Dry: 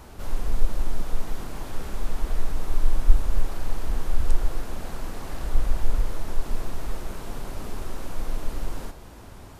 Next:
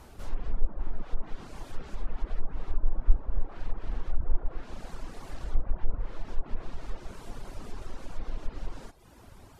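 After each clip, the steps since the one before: low-pass that closes with the level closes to 1.2 kHz, closed at -12 dBFS; reverb removal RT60 0.87 s; trim -5 dB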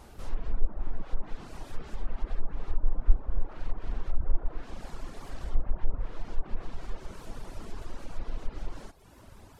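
vibrato with a chosen wave saw up 5.1 Hz, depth 160 cents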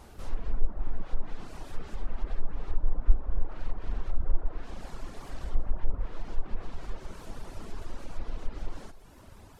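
plate-style reverb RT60 1.6 s, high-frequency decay 0.9×, DRR 14.5 dB

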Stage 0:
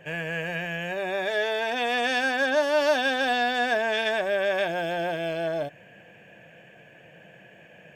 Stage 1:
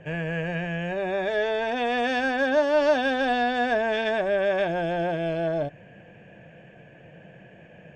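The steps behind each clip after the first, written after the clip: low-pass 8.5 kHz 24 dB/octave; tilt EQ -2.5 dB/octave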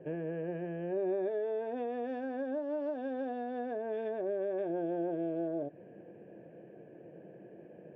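compression, threshold -30 dBFS, peak gain reduction 13.5 dB; band-pass filter 360 Hz, Q 2.9; trim +6 dB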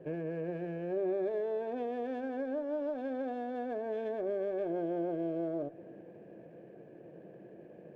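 on a send at -19 dB: reverberation RT60 3.5 s, pre-delay 62 ms; on the sum: sliding maximum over 3 samples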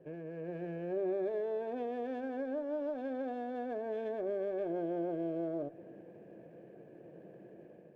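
level rider gain up to 6 dB; trim -7.5 dB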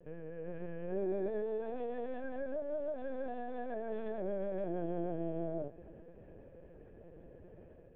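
LPC vocoder at 8 kHz pitch kept; trim -1 dB

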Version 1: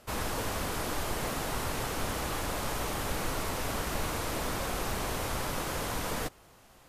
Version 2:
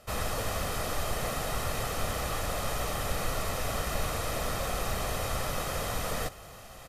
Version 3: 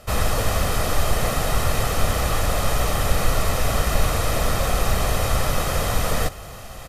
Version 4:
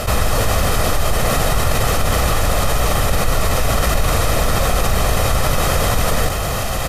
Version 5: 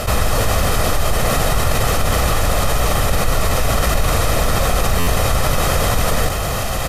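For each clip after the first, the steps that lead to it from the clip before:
comb 1.6 ms, depth 47%; reverse; upward compressor, threshold -37 dBFS; reverse
bass shelf 120 Hz +6 dB; trim +8.5 dB
level flattener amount 70%
buffer glitch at 4.99 s, samples 512, times 6

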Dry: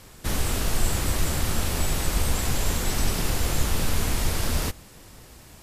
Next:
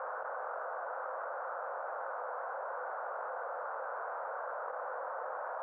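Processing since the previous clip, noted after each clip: Chebyshev band-pass 510–1500 Hz, order 4; level flattener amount 100%; trim -4 dB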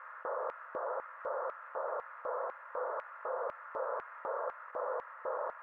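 comb of notches 760 Hz; LFO high-pass square 2 Hz 400–2200 Hz; trim +1.5 dB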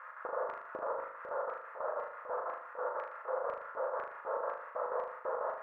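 square tremolo 6.1 Hz, depth 65%, duty 65%; flutter echo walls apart 6.6 m, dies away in 0.57 s

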